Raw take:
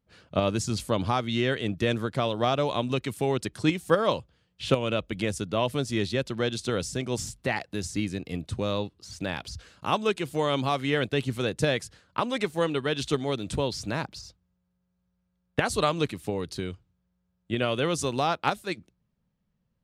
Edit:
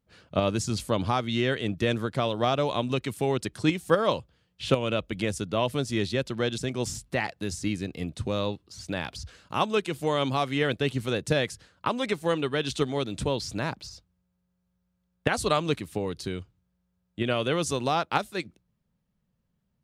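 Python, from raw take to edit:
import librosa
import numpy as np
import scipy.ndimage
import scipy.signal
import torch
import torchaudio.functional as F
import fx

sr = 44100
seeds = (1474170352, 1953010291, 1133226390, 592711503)

y = fx.edit(x, sr, fx.cut(start_s=6.58, length_s=0.32), tone=tone)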